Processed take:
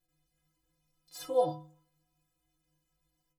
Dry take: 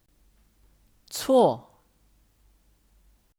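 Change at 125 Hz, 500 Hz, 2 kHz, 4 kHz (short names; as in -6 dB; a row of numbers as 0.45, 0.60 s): -7.5 dB, -9.0 dB, under -10 dB, -12.5 dB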